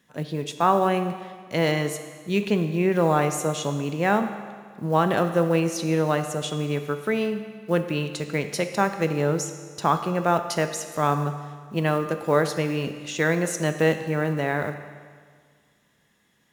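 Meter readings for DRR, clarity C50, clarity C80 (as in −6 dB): 8.0 dB, 9.5 dB, 10.5 dB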